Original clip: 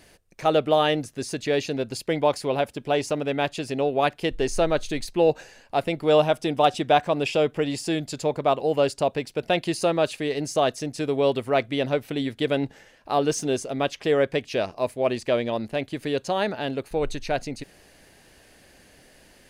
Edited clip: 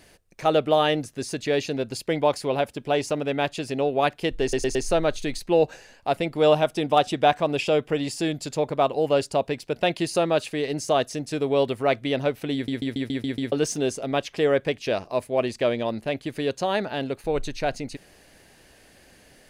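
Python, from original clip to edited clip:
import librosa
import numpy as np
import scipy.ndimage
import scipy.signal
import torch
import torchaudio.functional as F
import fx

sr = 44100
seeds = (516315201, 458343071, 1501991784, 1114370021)

y = fx.edit(x, sr, fx.stutter(start_s=4.42, slice_s=0.11, count=4),
    fx.stutter_over(start_s=12.21, slice_s=0.14, count=7), tone=tone)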